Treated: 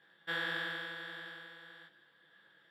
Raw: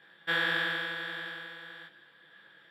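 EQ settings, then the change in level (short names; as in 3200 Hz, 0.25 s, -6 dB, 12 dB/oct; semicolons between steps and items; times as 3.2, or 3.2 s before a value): tone controls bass 0 dB, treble +10 dB; high shelf 4100 Hz -11 dB; notch 2400 Hz, Q 16; -6.5 dB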